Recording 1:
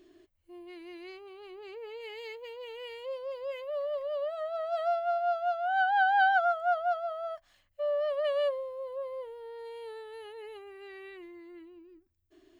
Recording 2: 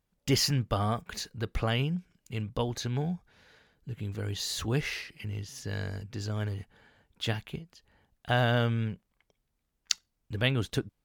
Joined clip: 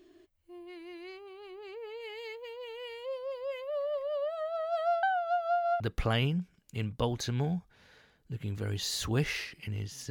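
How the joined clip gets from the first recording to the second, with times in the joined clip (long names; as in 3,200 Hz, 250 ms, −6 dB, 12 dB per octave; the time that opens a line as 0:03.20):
recording 1
0:05.03–0:05.80: reverse
0:05.80: continue with recording 2 from 0:01.37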